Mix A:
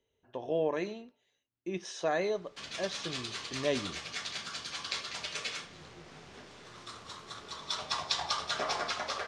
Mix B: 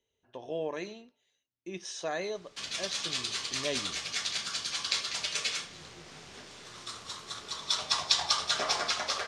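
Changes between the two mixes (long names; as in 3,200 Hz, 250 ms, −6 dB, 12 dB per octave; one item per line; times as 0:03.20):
speech −4.5 dB
master: add high-shelf EQ 3,100 Hz +10 dB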